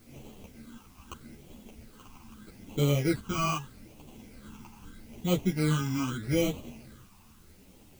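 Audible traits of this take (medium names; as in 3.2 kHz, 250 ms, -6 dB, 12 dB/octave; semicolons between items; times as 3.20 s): aliases and images of a low sample rate 1.8 kHz, jitter 0%; phasing stages 8, 0.8 Hz, lowest notch 520–1600 Hz; a quantiser's noise floor 10-bit, dither triangular; a shimmering, thickened sound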